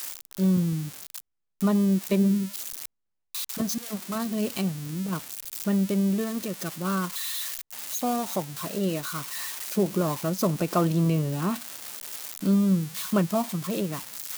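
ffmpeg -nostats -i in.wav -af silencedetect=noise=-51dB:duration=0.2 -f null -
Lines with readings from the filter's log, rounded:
silence_start: 1.20
silence_end: 1.61 | silence_duration: 0.41
silence_start: 2.86
silence_end: 3.35 | silence_duration: 0.49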